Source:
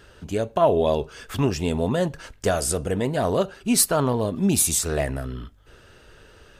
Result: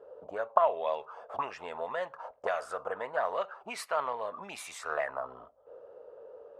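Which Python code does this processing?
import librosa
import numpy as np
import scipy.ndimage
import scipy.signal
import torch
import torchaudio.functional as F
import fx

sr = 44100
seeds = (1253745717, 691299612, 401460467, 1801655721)

y = fx.auto_wah(x, sr, base_hz=460.0, top_hz=2100.0, q=3.9, full_db=-18.0, direction='up')
y = fx.band_shelf(y, sr, hz=770.0, db=14.0, octaves=1.7)
y = F.gain(torch.from_numpy(y), -1.5).numpy()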